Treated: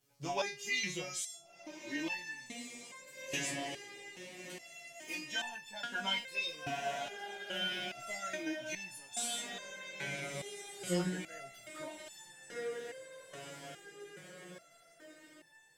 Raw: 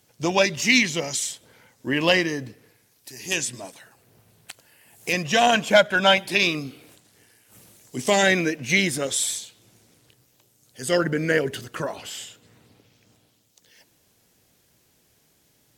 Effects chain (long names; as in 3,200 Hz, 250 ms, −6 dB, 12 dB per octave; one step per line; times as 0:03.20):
feedback delay with all-pass diffusion 1,464 ms, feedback 54%, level −7.5 dB
multi-voice chorus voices 2, 0.25 Hz, delay 17 ms, depth 3.2 ms
step-sequenced resonator 2.4 Hz 140–890 Hz
level +2.5 dB